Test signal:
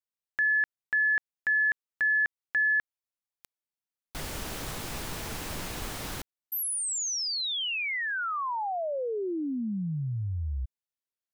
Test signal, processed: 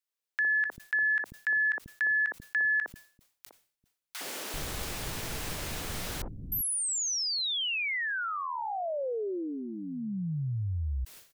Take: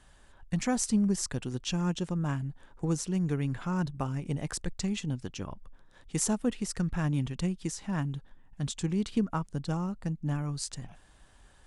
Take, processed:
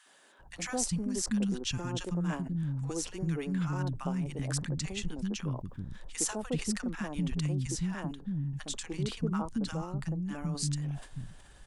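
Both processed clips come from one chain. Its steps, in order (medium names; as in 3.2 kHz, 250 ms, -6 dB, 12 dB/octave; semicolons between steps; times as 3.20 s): in parallel at +1 dB: compression, threshold -39 dBFS; on the sum: three bands offset in time highs, mids, lows 60/390 ms, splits 260/1000 Hz; decay stretcher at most 130 dB/s; trim -3 dB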